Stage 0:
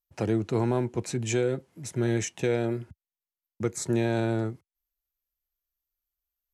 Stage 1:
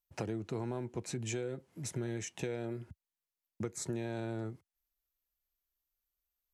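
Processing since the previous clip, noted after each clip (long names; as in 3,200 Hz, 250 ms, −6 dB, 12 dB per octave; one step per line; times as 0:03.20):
downward compressor 4 to 1, threshold −35 dBFS, peak gain reduction 12 dB
level −1 dB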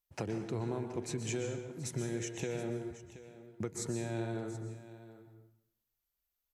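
single-tap delay 726 ms −15.5 dB
dense smooth reverb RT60 0.8 s, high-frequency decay 0.85×, pre-delay 110 ms, DRR 6 dB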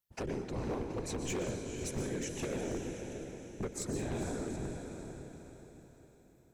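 random phases in short frames
feedback delay with all-pass diffusion 476 ms, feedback 45%, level −7 dB
wave folding −29 dBFS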